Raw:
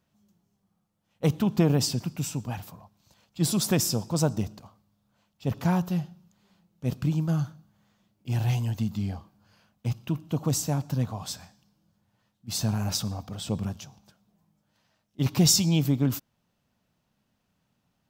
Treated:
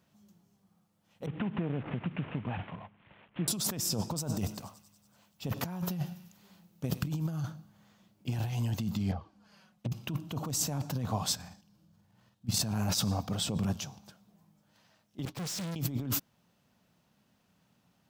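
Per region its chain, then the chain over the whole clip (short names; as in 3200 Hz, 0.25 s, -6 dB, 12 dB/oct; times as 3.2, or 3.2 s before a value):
1.26–3.48 CVSD 16 kbps + compressor 12:1, threshold -33 dBFS
4.15–7.43 high shelf 11000 Hz +9 dB + thinning echo 95 ms, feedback 69%, high-pass 1200 Hz, level -19 dB
9.11–9.92 treble ducked by the level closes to 350 Hz, closed at -27 dBFS + envelope flanger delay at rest 5.9 ms, full sweep at -26.5 dBFS
11.35–12.62 low shelf 170 Hz +8 dB + level quantiser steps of 10 dB + doubler 50 ms -4 dB
15.25–15.76 expander -29 dBFS + tube stage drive 40 dB, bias 0.7 + Doppler distortion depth 0.48 ms
whole clip: HPF 94 Hz 6 dB/oct; bell 180 Hz +2.5 dB 0.23 oct; negative-ratio compressor -32 dBFS, ratio -1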